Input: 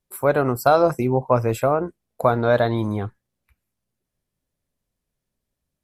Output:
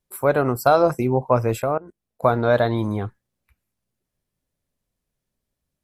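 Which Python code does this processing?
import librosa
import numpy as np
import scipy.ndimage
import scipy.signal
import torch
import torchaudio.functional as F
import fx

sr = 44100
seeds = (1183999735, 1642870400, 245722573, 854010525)

y = fx.level_steps(x, sr, step_db=21, at=(1.62, 2.24))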